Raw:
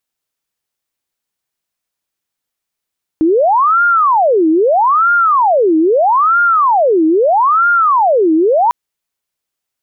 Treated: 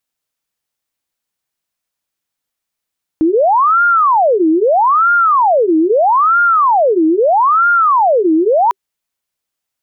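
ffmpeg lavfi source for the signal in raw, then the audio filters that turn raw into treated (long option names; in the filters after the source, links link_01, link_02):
-f lavfi -i "aevalsrc='0.422*sin(2*PI*(862*t-548/(2*PI*0.78)*sin(2*PI*0.78*t)))':duration=5.5:sample_rate=44100"
-af "bandreject=frequency=390:width=12"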